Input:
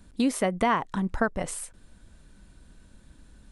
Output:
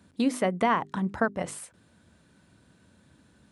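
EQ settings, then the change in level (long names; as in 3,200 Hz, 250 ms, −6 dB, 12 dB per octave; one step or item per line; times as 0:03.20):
high-pass filter 89 Hz 24 dB per octave
high-shelf EQ 5,500 Hz −6.5 dB
mains-hum notches 50/100/150/200/250/300/350/400 Hz
0.0 dB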